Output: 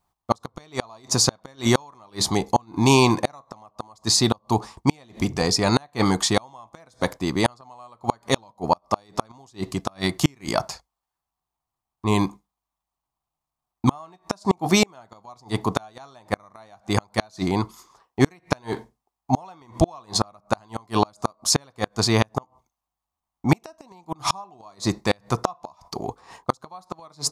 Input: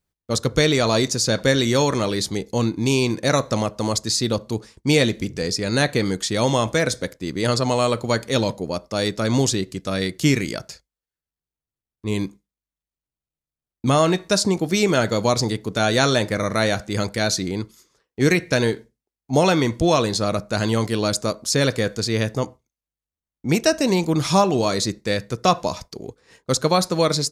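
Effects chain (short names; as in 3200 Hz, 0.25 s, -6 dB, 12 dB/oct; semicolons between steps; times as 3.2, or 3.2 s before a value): band shelf 910 Hz +15 dB 1 oct; notch 470 Hz, Q 12; flipped gate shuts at -8 dBFS, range -36 dB; gain +3 dB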